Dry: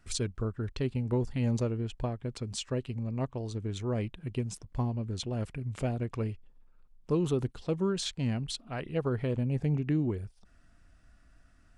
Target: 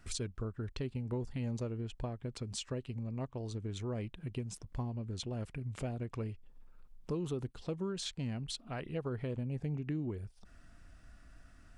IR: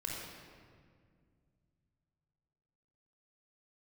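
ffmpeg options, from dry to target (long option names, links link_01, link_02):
-af "acompressor=threshold=-47dB:ratio=2,volume=3.5dB"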